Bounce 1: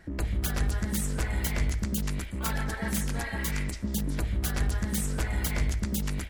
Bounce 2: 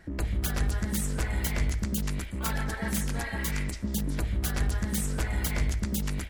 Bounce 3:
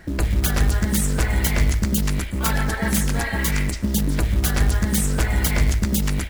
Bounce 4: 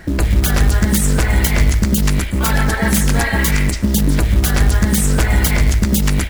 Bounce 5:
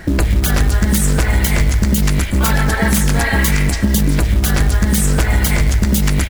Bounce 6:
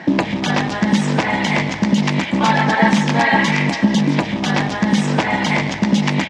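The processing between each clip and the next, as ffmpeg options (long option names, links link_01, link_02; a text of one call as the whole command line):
ffmpeg -i in.wav -af anull out.wav
ffmpeg -i in.wav -af "acrusher=bits=6:mode=log:mix=0:aa=0.000001,volume=9dB" out.wav
ffmpeg -i in.wav -af "alimiter=limit=-11.5dB:level=0:latency=1:release=101,volume=7.5dB" out.wav
ffmpeg -i in.wav -af "aecho=1:1:514:0.2,acompressor=threshold=-15dB:ratio=3,volume=4dB" out.wav
ffmpeg -i in.wav -af "highpass=frequency=170:width=0.5412,highpass=frequency=170:width=1.3066,equalizer=frequency=410:width_type=q:width=4:gain=-7,equalizer=frequency=890:width_type=q:width=4:gain=7,equalizer=frequency=1400:width_type=q:width=4:gain=-8,equalizer=frequency=4400:width_type=q:width=4:gain=-5,lowpass=frequency=4900:width=0.5412,lowpass=frequency=4900:width=1.3066,volume=4dB" out.wav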